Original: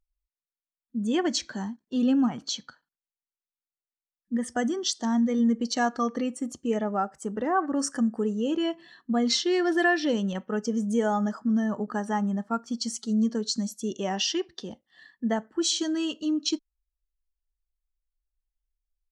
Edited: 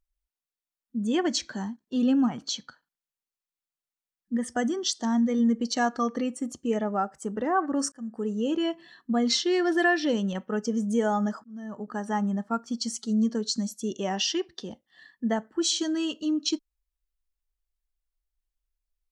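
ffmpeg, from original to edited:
-filter_complex "[0:a]asplit=3[s0][s1][s2];[s0]atrim=end=7.92,asetpts=PTS-STARTPTS,afade=t=out:st=7.916:d=0.004:c=hsin[s3];[s1]atrim=start=7.92:end=11.44,asetpts=PTS-STARTPTS,afade=t=in:d=0.46,afade=t=out:st=3.516:d=0.004:c=hsin[s4];[s2]atrim=start=11.44,asetpts=PTS-STARTPTS,afade=t=in:d=0.74[s5];[s3][s4][s5]concat=n=3:v=0:a=1"

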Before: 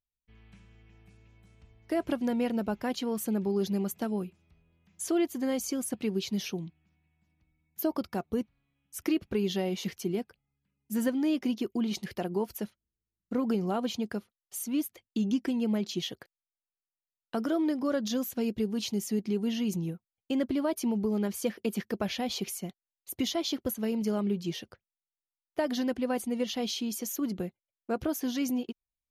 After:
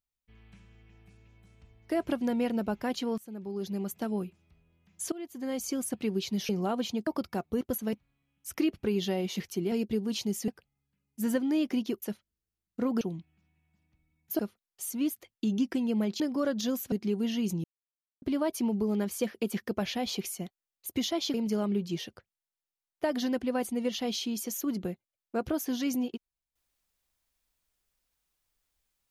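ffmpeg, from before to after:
-filter_complex "[0:a]asplit=17[s0][s1][s2][s3][s4][s5][s6][s7][s8][s9][s10][s11][s12][s13][s14][s15][s16];[s0]atrim=end=3.18,asetpts=PTS-STARTPTS,afade=t=out:st=3.176:d=0.004:c=hsin:silence=0.105925[s17];[s1]atrim=start=3.18:end=5.12,asetpts=PTS-STARTPTS,afade=t=in:d=0.98:silence=0.105925,afade=t=out:st=1.936:d=0.004:c=hsin:silence=0.0891251[s18];[s2]atrim=start=5.12:end=6.492,asetpts=PTS-STARTPTS,afade=t=in:d=0.62:silence=0.0891251[s19];[s3]atrim=start=13.538:end=14.122[s20];[s4]atrim=start=7.868:end=8.412[s21];[s5]atrim=start=23.568:end=23.892[s22];[s6]atrim=start=8.408:end=10.202[s23];[s7]atrim=start=18.388:end=19.152[s24];[s8]atrim=start=10.198:end=11.742[s25];[s9]atrim=start=12.548:end=13.542[s26];[s10]atrim=start=6.488:end=7.872[s27];[s11]atrim=start=14.118:end=15.932[s28];[s12]atrim=start=17.668:end=18.392[s29];[s13]atrim=start=19.148:end=19.87,asetpts=PTS-STARTPTS,afade=t=out:st=0.718:d=0.004:c=hsin[s30];[s14]atrim=start=19.87:end=20.45,asetpts=PTS-STARTPTS,volume=0[s31];[s15]atrim=start=20.45:end=23.572,asetpts=PTS-STARTPTS,afade=t=in:d=0.004:c=hsin[s32];[s16]atrim=start=23.888[s33];[s17][s18][s19]concat=n=3:v=0:a=1[s34];[s34][s20]acrossfade=d=0.004:c1=hsin:c2=hsin[s35];[s35][s21]acrossfade=d=0.004:c1=hsin:c2=hsin[s36];[s36][s22]acrossfade=d=0.004:c1=hsin:c2=hsin[s37];[s37][s23]acrossfade=d=0.004:c1=hsin:c2=hsin[s38];[s38][s24]acrossfade=d=0.004:c1=hsin:c2=hsin[s39];[s39][s25]acrossfade=d=0.004:c1=hsin:c2=hsin[s40];[s40][s26]acrossfade=d=0.004:c1=hsin:c2=hsin[s41];[s41][s27]acrossfade=d=0.004:c1=hsin:c2=hsin[s42];[s42][s28]acrossfade=d=0.004:c1=hsin:c2=hsin[s43];[s43][s29]acrossfade=d=0.004:c1=hsin:c2=hsin[s44];[s30][s31][s32]concat=n=3:v=0:a=1[s45];[s44][s45]acrossfade=d=0.004:c1=hsin:c2=hsin[s46];[s46][s33]acrossfade=d=0.004:c1=hsin:c2=hsin"

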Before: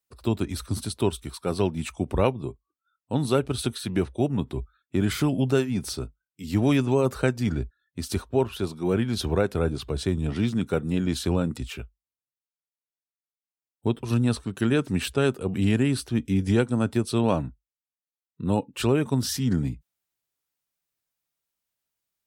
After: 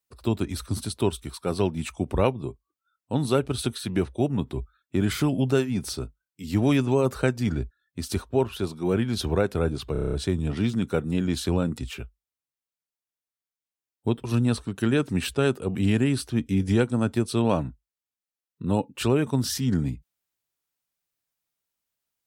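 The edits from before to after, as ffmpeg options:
-filter_complex "[0:a]asplit=8[s0][s1][s2][s3][s4][s5][s6][s7];[s0]atrim=end=9.952[s8];[s1]atrim=start=9.918:end=9.952[s9];[s2]atrim=start=9.918:end=9.952[s10];[s3]atrim=start=9.918:end=9.952[s11];[s4]atrim=start=9.918:end=9.952[s12];[s5]atrim=start=9.918:end=9.952[s13];[s6]atrim=start=9.918:end=9.952[s14];[s7]atrim=start=9.918[s15];[s8][s9]acrossfade=d=0.004:c1=hsin:c2=hsin[s16];[s16][s10]acrossfade=d=0.004:c1=hsin:c2=hsin[s17];[s17][s11]acrossfade=d=0.004:c1=hsin:c2=hsin[s18];[s18][s12]acrossfade=d=0.004:c1=hsin:c2=hsin[s19];[s19][s13]acrossfade=d=0.004:c1=hsin:c2=hsin[s20];[s20][s14]acrossfade=d=0.004:c1=hsin:c2=hsin[s21];[s21][s15]acrossfade=d=0.004:c1=hsin:c2=hsin"

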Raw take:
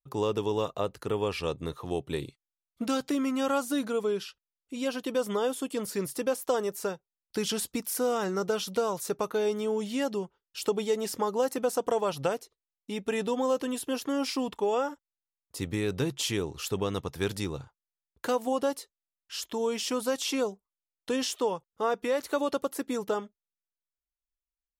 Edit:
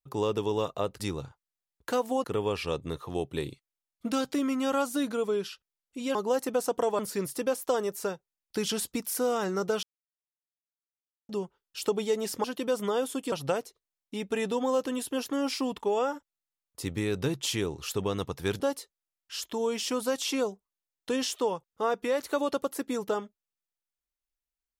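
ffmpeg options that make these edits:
-filter_complex "[0:a]asplit=10[s0][s1][s2][s3][s4][s5][s6][s7][s8][s9];[s0]atrim=end=1.002[s10];[s1]atrim=start=17.358:end=18.602[s11];[s2]atrim=start=0.998:end=4.912[s12];[s3]atrim=start=11.238:end=12.082[s13];[s4]atrim=start=5.788:end=8.63,asetpts=PTS-STARTPTS,afade=t=out:st=2.838:d=0.004:c=hsin[s14];[s5]atrim=start=8.63:end=10.09,asetpts=PTS-STARTPTS,volume=0[s15];[s6]atrim=start=10.09:end=11.242,asetpts=PTS-STARTPTS,afade=t=in:d=0.004:c=hsin[s16];[s7]atrim=start=4.908:end=5.792[s17];[s8]atrim=start=12.078:end=17.362[s18];[s9]atrim=start=18.598[s19];[s10][s11]acrossfade=d=0.004:c1=hsin:c2=hsin[s20];[s20][s12]acrossfade=d=0.004:c1=hsin:c2=hsin[s21];[s21][s13]acrossfade=d=0.004:c1=hsin:c2=hsin[s22];[s14][s15][s16]concat=n=3:v=0:a=1[s23];[s22][s23]acrossfade=d=0.004:c1=hsin:c2=hsin[s24];[s24][s17]acrossfade=d=0.004:c1=hsin:c2=hsin[s25];[s25][s18]acrossfade=d=0.004:c1=hsin:c2=hsin[s26];[s26][s19]acrossfade=d=0.004:c1=hsin:c2=hsin"

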